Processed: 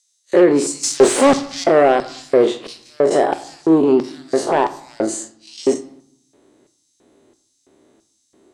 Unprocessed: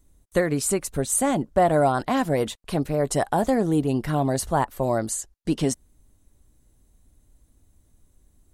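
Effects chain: time blur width 89 ms; dynamic EQ 8100 Hz, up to +5 dB, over -45 dBFS, Q 1.4; in parallel at +2 dB: compressor, threshold -32 dBFS, peak gain reduction 14.5 dB; on the sum: sine folder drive 7 dB, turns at -8 dBFS; 0.83–1.64 sample leveller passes 5; LFO high-pass square 1.5 Hz 370–5400 Hz; soft clip -0.5 dBFS, distortion -21 dB; air absorption 110 m; on a send at -10.5 dB: reverb RT60 0.70 s, pre-delay 3 ms; on the sum: gain -1.5 dB

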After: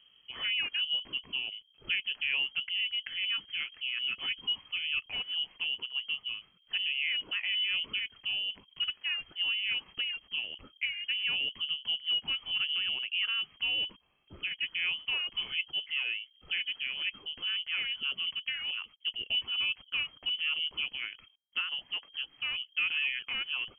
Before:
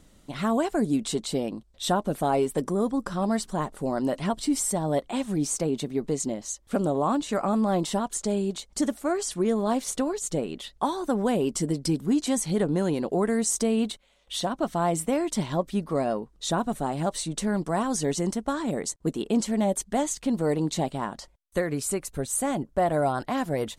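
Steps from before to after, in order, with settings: inverted band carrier 3200 Hz; gain -7.5 dB

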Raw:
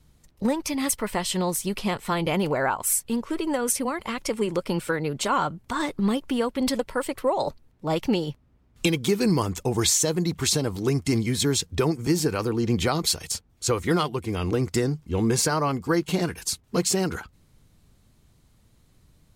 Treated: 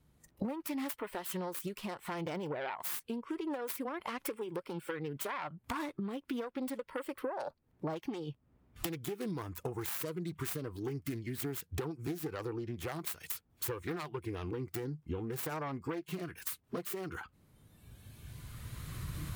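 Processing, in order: self-modulated delay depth 0.29 ms; recorder AGC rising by 10 dB/s; HPF 94 Hz 6 dB/oct; bell 5600 Hz -8 dB 1.9 oct; compressor 12:1, threshold -38 dBFS, peak gain reduction 20 dB; spectral noise reduction 10 dB; gain +3.5 dB

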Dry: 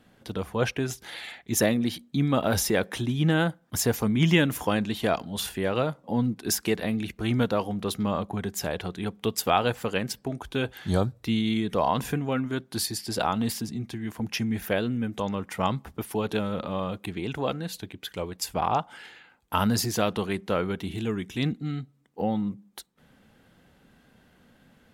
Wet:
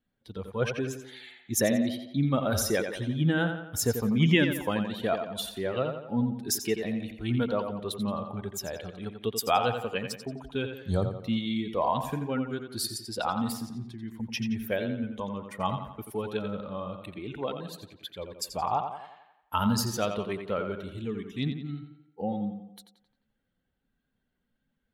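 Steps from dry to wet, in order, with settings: per-bin expansion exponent 1.5; tape echo 87 ms, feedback 53%, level -6.5 dB, low-pass 4300 Hz

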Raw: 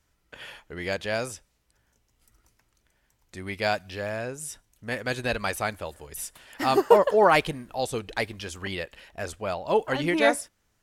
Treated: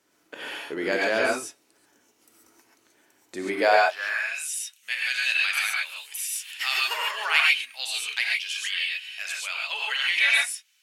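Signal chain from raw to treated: dynamic EQ 1500 Hz, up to +6 dB, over -36 dBFS, Q 0.88; high-pass sweep 310 Hz -> 2700 Hz, 3.5–4.25; non-linear reverb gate 0.16 s rising, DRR -3 dB; in parallel at +3 dB: compressor, threshold -32 dBFS, peak gain reduction 19.5 dB; on the sum: gain -4.5 dB

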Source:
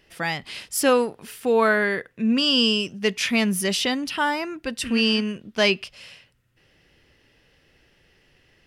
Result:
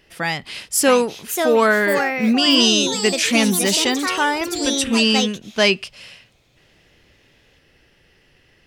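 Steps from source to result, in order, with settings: echoes that change speed 0.712 s, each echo +4 st, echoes 3, each echo -6 dB; dynamic EQ 7700 Hz, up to +6 dB, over -42 dBFS, Q 1.4; gain +3.5 dB

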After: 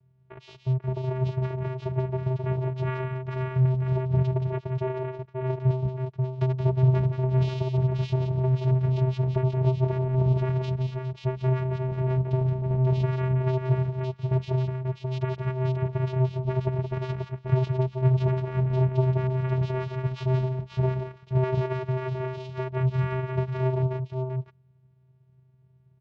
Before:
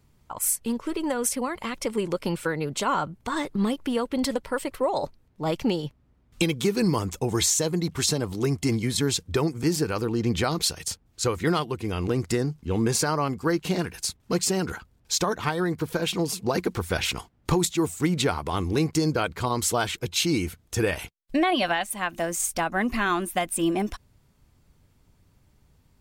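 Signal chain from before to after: tapped delay 0.174/0.536 s -6.5/-4.5 dB; vocoder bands 4, square 129 Hz; air absorption 230 m

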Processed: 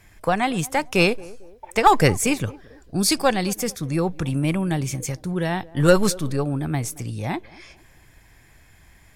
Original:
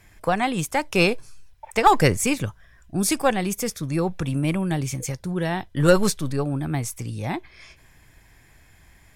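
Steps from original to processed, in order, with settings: 2.47–3.56 bell 4500 Hz +11.5 dB 0.35 oct; narrowing echo 0.224 s, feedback 44%, band-pass 460 Hz, level -19.5 dB; gain +1 dB

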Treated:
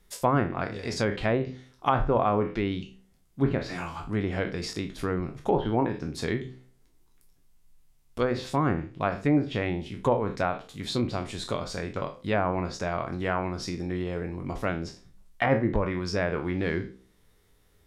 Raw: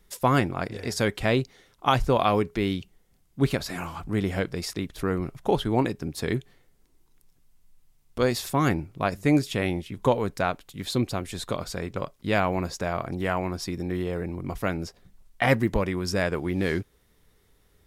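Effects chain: spectral trails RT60 0.34 s; de-hum 63.95 Hz, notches 8; treble ducked by the level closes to 1400 Hz, closed at -18 dBFS; gain -2 dB

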